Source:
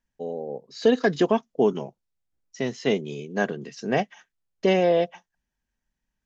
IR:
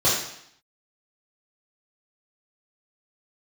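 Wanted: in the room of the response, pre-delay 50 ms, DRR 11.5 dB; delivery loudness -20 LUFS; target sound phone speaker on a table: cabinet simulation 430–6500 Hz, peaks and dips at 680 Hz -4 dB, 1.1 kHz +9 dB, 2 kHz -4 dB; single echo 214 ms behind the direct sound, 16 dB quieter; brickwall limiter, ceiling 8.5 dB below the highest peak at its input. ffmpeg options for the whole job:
-filter_complex "[0:a]alimiter=limit=0.15:level=0:latency=1,aecho=1:1:214:0.158,asplit=2[s0][s1];[1:a]atrim=start_sample=2205,adelay=50[s2];[s1][s2]afir=irnorm=-1:irlink=0,volume=0.0398[s3];[s0][s3]amix=inputs=2:normalize=0,highpass=f=430:w=0.5412,highpass=f=430:w=1.3066,equalizer=f=680:t=q:w=4:g=-4,equalizer=f=1100:t=q:w=4:g=9,equalizer=f=2000:t=q:w=4:g=-4,lowpass=f=6500:w=0.5412,lowpass=f=6500:w=1.3066,volume=4.22"

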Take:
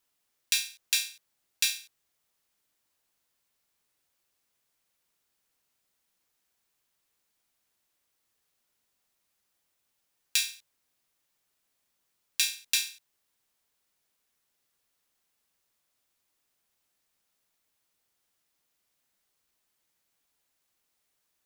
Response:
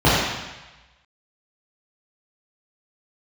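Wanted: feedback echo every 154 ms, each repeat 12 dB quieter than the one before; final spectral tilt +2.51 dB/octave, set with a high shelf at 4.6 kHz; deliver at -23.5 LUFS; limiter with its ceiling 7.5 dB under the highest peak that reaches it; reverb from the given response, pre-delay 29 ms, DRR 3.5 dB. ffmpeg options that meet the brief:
-filter_complex "[0:a]highshelf=f=4600:g=3.5,alimiter=limit=0.355:level=0:latency=1,aecho=1:1:154|308|462:0.251|0.0628|0.0157,asplit=2[s0][s1];[1:a]atrim=start_sample=2205,adelay=29[s2];[s1][s2]afir=irnorm=-1:irlink=0,volume=0.0376[s3];[s0][s3]amix=inputs=2:normalize=0,volume=2.11"

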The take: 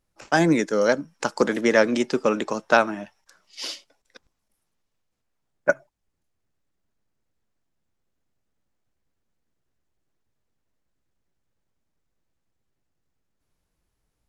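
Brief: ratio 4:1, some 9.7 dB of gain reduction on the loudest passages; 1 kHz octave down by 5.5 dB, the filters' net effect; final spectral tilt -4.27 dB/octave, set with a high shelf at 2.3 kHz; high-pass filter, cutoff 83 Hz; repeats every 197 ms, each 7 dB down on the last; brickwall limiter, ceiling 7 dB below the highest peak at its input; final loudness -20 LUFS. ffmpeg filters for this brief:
-af "highpass=83,equalizer=f=1000:t=o:g=-7,highshelf=f=2300:g=-5,acompressor=threshold=0.0447:ratio=4,alimiter=limit=0.0891:level=0:latency=1,aecho=1:1:197|394|591|788|985:0.447|0.201|0.0905|0.0407|0.0183,volume=4.73"

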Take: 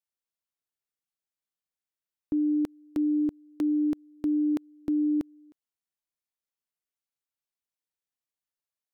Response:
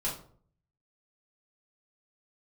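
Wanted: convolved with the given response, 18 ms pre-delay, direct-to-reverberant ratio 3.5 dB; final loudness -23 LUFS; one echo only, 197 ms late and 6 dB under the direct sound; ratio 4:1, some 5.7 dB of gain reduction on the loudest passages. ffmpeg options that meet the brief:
-filter_complex "[0:a]acompressor=threshold=0.0316:ratio=4,aecho=1:1:197:0.501,asplit=2[s0][s1];[1:a]atrim=start_sample=2205,adelay=18[s2];[s1][s2]afir=irnorm=-1:irlink=0,volume=0.376[s3];[s0][s3]amix=inputs=2:normalize=0,volume=2.82"

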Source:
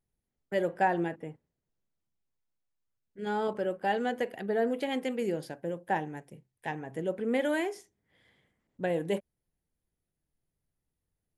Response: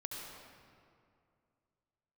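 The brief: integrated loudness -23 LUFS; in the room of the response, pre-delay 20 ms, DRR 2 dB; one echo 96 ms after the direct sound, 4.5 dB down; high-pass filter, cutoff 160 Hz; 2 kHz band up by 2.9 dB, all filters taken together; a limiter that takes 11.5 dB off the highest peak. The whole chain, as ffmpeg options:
-filter_complex "[0:a]highpass=160,equalizer=f=2000:t=o:g=3.5,alimiter=level_in=1.06:limit=0.0631:level=0:latency=1,volume=0.944,aecho=1:1:96:0.596,asplit=2[s0][s1];[1:a]atrim=start_sample=2205,adelay=20[s2];[s1][s2]afir=irnorm=-1:irlink=0,volume=0.841[s3];[s0][s3]amix=inputs=2:normalize=0,volume=2.99"

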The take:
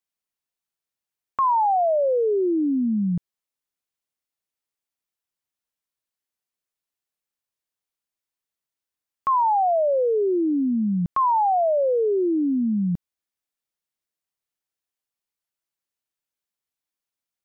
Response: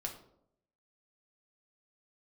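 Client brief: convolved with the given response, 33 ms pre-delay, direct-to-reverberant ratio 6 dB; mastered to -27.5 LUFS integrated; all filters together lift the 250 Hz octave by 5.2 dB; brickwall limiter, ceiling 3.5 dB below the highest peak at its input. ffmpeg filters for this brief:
-filter_complex "[0:a]equalizer=f=250:t=o:g=6.5,alimiter=limit=0.168:level=0:latency=1,asplit=2[s0][s1];[1:a]atrim=start_sample=2205,adelay=33[s2];[s1][s2]afir=irnorm=-1:irlink=0,volume=0.501[s3];[s0][s3]amix=inputs=2:normalize=0,volume=0.376"

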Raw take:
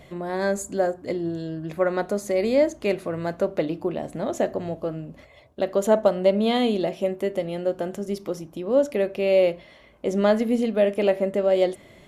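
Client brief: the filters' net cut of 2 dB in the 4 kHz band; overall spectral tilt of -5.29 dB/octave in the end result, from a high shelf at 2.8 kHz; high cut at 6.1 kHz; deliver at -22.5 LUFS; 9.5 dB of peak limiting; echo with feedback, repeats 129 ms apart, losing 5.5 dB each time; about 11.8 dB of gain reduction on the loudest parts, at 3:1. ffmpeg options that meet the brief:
-af "lowpass=6100,highshelf=f=2800:g=6.5,equalizer=f=4000:t=o:g=-7.5,acompressor=threshold=0.0316:ratio=3,alimiter=level_in=1.26:limit=0.0631:level=0:latency=1,volume=0.794,aecho=1:1:129|258|387|516|645|774|903:0.531|0.281|0.149|0.079|0.0419|0.0222|0.0118,volume=3.98"

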